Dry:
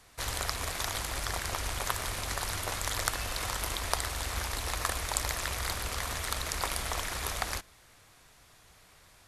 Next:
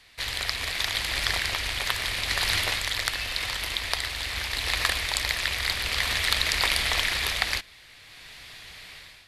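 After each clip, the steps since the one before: band shelf 2900 Hz +11.5 dB; AGC gain up to 11 dB; gain -3 dB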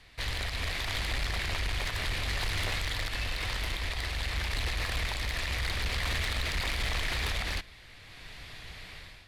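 tilt -2 dB/oct; limiter -17 dBFS, peak gain reduction 10.5 dB; soft clip -25.5 dBFS, distortion -13 dB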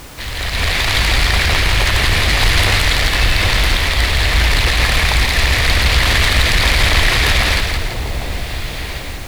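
AGC gain up to 11 dB; added noise pink -41 dBFS; split-band echo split 850 Hz, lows 0.794 s, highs 0.167 s, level -5 dB; gain +6 dB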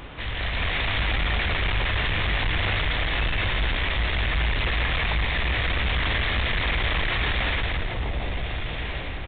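soft clip -17 dBFS, distortion -9 dB; doubler 19 ms -12.5 dB; downsampling 8000 Hz; gain -4 dB

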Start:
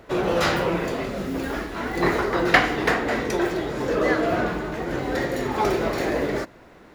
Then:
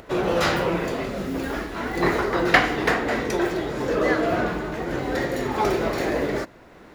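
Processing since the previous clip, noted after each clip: upward compressor, threshold -41 dBFS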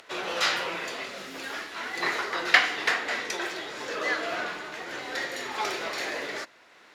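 band-pass 4100 Hz, Q 0.62; gain +2.5 dB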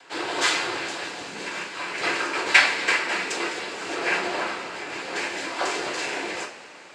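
noise vocoder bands 8; two-slope reverb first 0.27 s, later 3.8 s, from -21 dB, DRR -2 dB

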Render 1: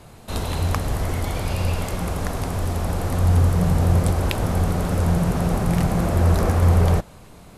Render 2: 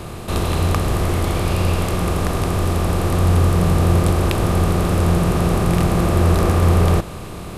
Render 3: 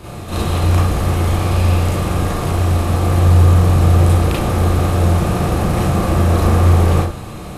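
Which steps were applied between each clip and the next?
per-bin compression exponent 0.6; small resonant body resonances 350/1200 Hz, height 7 dB
reverb RT60 0.35 s, pre-delay 27 ms, DRR -7 dB; gain -6.5 dB

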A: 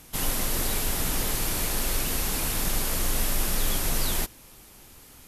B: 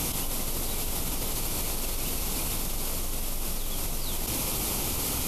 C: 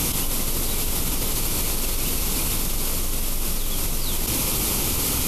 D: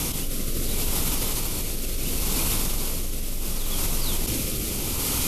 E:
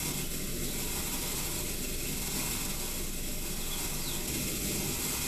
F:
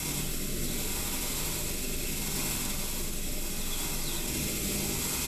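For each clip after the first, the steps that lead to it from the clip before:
bell 1700 Hz -10.5 dB 0.46 oct; fast leveller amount 100%; gain -8 dB
bell 710 Hz -5 dB 0.69 oct; gain +6.5 dB
rotary speaker horn 0.7 Hz
limiter -20 dBFS, peak gain reduction 8 dB; reverb RT60 0.55 s, pre-delay 3 ms, DRR -5 dB; gain -7.5 dB
echo 89 ms -4 dB

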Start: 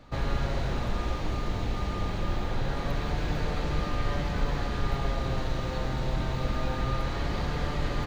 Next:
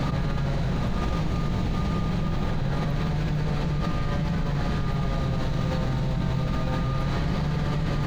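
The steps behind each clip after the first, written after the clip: bell 160 Hz +13.5 dB 0.63 oct; fast leveller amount 100%; gain -5 dB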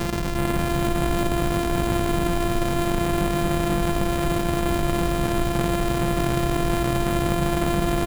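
sample sorter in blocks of 128 samples; bouncing-ball echo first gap 0.36 s, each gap 0.6×, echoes 5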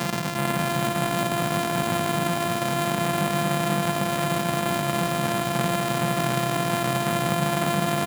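HPF 140 Hz 24 dB/oct; bell 350 Hz -9.5 dB 0.68 oct; gain +2.5 dB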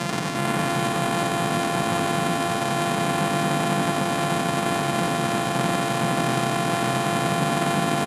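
LPF 11000 Hz 24 dB/oct; frequency-shifting echo 91 ms, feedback 31%, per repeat +92 Hz, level -5 dB

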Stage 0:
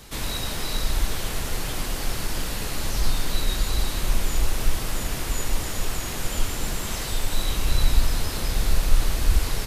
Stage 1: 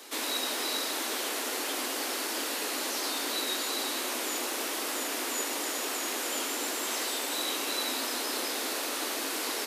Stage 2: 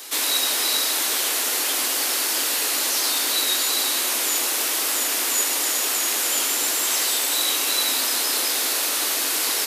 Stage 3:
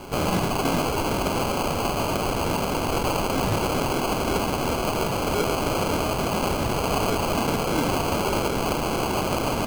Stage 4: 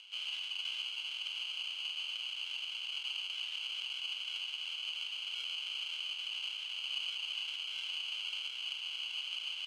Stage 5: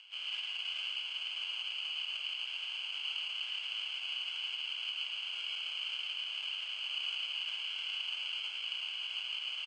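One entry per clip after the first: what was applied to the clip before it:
steep high-pass 250 Hz 72 dB/oct
tilt +2.5 dB/oct; gain +5 dB
sample-and-hold 24×; gain -1.5 dB
upward compressor, threshold -37 dBFS; ladder band-pass 3100 Hz, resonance 85%; gain -3.5 dB
speaker cabinet 330–7800 Hz, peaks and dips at 1700 Hz +5 dB, 3900 Hz -9 dB, 6300 Hz -8 dB; tapped delay 0.109/0.166 s -3/-4.5 dB

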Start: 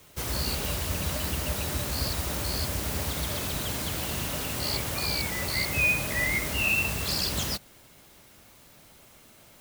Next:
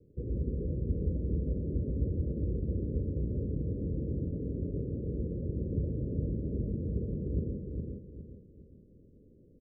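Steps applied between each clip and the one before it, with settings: steep low-pass 500 Hz 72 dB/oct; on a send: feedback echo 0.41 s, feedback 34%, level -4 dB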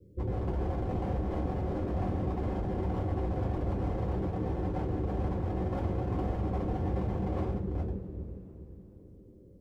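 wavefolder -32 dBFS; reverb, pre-delay 3 ms, DRR -5.5 dB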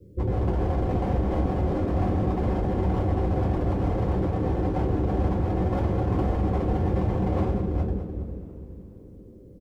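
feedback echo 0.207 s, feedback 38%, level -11 dB; gain +7 dB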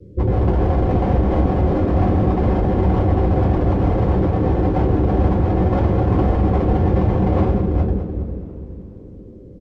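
air absorption 87 m; gain +8 dB

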